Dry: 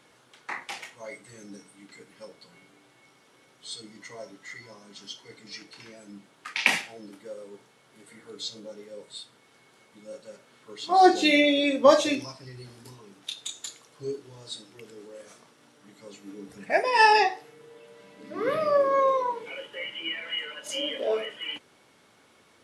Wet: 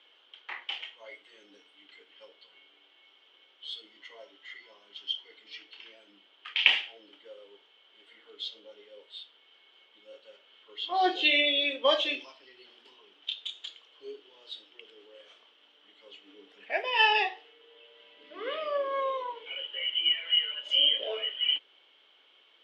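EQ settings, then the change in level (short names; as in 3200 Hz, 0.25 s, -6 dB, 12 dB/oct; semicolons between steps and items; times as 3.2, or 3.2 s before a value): HPF 340 Hz 24 dB/oct; synth low-pass 3100 Hz, resonance Q 11; -9.0 dB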